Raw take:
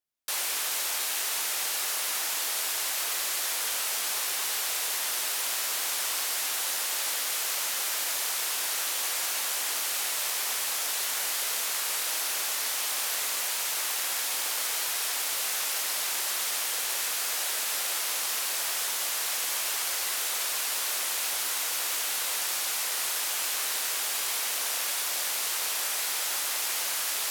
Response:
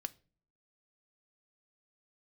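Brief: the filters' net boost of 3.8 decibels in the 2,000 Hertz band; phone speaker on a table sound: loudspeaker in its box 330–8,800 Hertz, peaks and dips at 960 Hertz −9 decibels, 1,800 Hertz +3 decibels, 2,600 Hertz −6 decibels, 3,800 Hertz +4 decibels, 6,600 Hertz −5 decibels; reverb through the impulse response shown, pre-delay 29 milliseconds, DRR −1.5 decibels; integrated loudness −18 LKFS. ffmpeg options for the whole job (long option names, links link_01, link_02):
-filter_complex "[0:a]equalizer=frequency=2000:width_type=o:gain=5,asplit=2[link_01][link_02];[1:a]atrim=start_sample=2205,adelay=29[link_03];[link_02][link_03]afir=irnorm=-1:irlink=0,volume=3.5dB[link_04];[link_01][link_04]amix=inputs=2:normalize=0,highpass=frequency=330:width=0.5412,highpass=frequency=330:width=1.3066,equalizer=frequency=960:width_type=q:width=4:gain=-9,equalizer=frequency=1800:width_type=q:width=4:gain=3,equalizer=frequency=2600:width_type=q:width=4:gain=-6,equalizer=frequency=3800:width_type=q:width=4:gain=4,equalizer=frequency=6600:width_type=q:width=4:gain=-5,lowpass=frequency=8800:width=0.5412,lowpass=frequency=8800:width=1.3066,volume=7dB"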